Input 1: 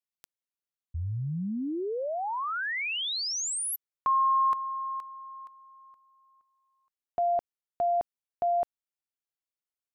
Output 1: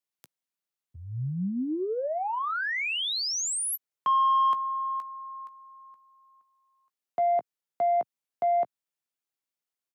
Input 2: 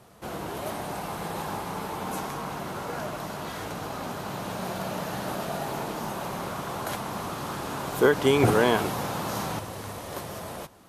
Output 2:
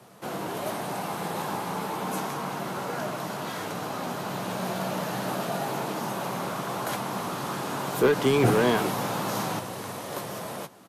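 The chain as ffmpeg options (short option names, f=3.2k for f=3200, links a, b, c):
-filter_complex "[0:a]highpass=f=120:w=0.5412,highpass=f=120:w=1.3066,acrossover=split=280[a][b];[b]asoftclip=type=tanh:threshold=-21dB[c];[a][c]amix=inputs=2:normalize=0,asplit=2[d][e];[e]adelay=16,volume=-13dB[f];[d][f]amix=inputs=2:normalize=0,volume=2dB"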